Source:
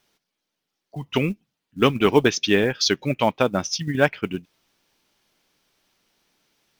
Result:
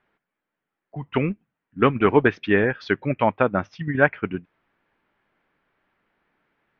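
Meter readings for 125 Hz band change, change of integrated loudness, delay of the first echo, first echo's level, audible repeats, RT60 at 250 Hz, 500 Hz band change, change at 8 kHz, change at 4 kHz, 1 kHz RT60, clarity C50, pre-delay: 0.0 dB, −0.5 dB, no echo audible, no echo audible, no echo audible, no reverb audible, 0.0 dB, below −30 dB, −14.0 dB, no reverb audible, no reverb audible, no reverb audible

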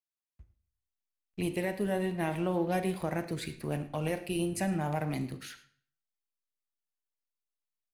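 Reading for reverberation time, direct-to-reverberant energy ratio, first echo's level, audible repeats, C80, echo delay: 0.50 s, 9.5 dB, −19.0 dB, 1, 15.0 dB, 108 ms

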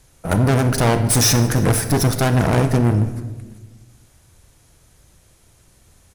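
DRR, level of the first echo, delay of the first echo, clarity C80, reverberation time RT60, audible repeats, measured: 9.0 dB, −24.0 dB, 321 ms, 11.5 dB, 1.2 s, 1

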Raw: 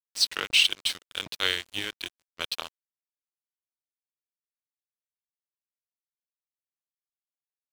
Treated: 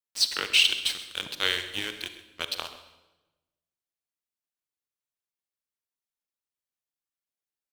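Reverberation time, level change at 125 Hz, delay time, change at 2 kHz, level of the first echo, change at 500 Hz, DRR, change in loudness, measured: 1.1 s, +0.5 dB, 132 ms, +0.5 dB, −16.5 dB, +1.0 dB, 9.0 dB, +0.5 dB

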